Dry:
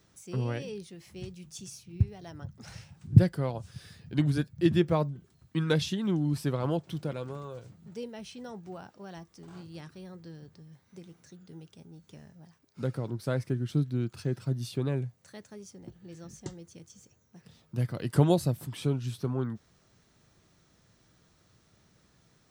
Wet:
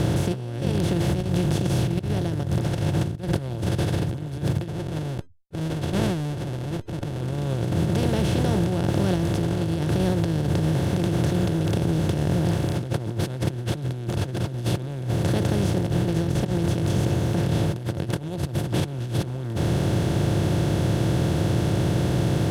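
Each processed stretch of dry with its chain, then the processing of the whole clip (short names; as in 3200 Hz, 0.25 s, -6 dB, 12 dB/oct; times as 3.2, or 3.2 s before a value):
4.68–7.21 compressor 2.5:1, threshold -30 dBFS + Schmitt trigger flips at -43 dBFS + air absorption 58 m
whole clip: per-bin compression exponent 0.2; negative-ratio compressor -20 dBFS, ratio -0.5; gain -3 dB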